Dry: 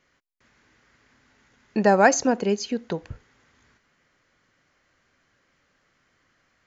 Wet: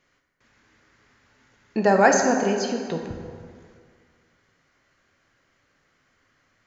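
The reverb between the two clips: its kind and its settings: plate-style reverb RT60 2 s, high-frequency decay 0.6×, DRR 2.5 dB; gain -1 dB

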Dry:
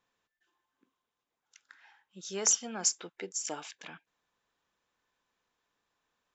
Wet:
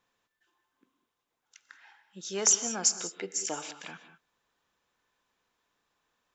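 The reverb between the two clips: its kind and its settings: non-linear reverb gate 0.22 s rising, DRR 11 dB; gain +3 dB

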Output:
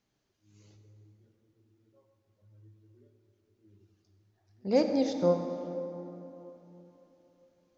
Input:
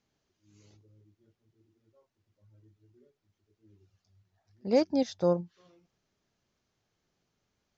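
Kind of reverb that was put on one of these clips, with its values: plate-style reverb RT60 3.5 s, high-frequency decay 0.5×, DRR 4.5 dB; gain -1 dB

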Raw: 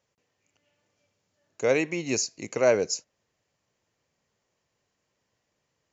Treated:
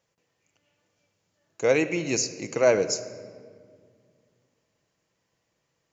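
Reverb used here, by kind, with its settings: shoebox room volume 3500 m³, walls mixed, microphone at 0.69 m; gain +1 dB

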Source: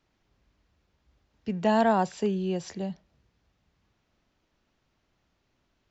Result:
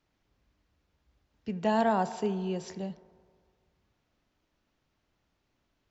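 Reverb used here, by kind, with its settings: FDN reverb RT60 2 s, low-frequency decay 0.8×, high-frequency decay 0.3×, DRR 13.5 dB; gain -3.5 dB

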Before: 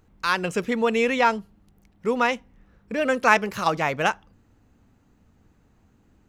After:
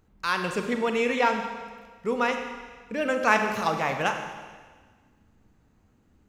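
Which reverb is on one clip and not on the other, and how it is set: Schroeder reverb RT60 1.5 s, combs from 29 ms, DRR 5 dB; gain -4 dB

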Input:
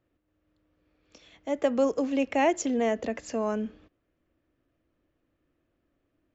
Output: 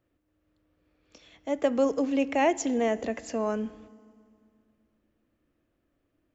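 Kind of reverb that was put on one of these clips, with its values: FDN reverb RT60 2.2 s, low-frequency decay 1.35×, high-frequency decay 0.95×, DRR 18.5 dB

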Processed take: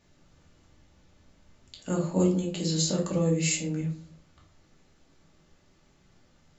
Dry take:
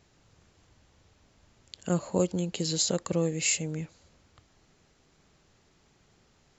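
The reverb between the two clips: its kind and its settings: shoebox room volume 300 m³, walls furnished, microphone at 2.5 m; gain -4.5 dB

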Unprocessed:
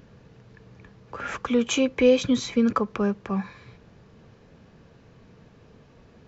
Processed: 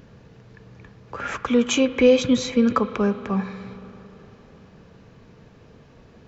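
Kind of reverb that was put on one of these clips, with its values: spring tank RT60 3.8 s, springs 37/58 ms, chirp 50 ms, DRR 13 dB; gain +3 dB

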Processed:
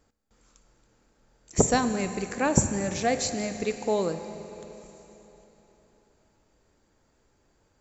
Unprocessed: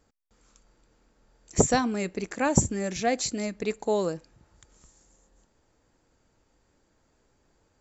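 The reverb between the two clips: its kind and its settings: Schroeder reverb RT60 3.7 s, combs from 33 ms, DRR 9 dB

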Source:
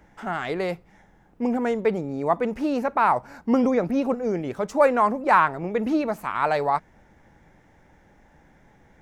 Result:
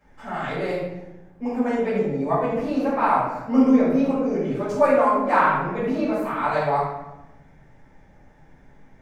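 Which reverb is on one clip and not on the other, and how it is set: shoebox room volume 380 m³, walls mixed, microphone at 5.8 m; gain -13 dB

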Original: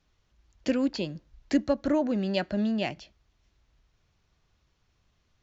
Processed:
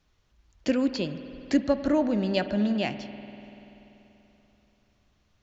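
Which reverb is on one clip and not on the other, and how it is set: spring tank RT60 3.5 s, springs 48 ms, chirp 30 ms, DRR 10 dB; gain +1.5 dB

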